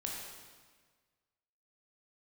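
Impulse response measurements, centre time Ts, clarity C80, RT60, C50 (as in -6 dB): 82 ms, 2.5 dB, 1.5 s, 0.5 dB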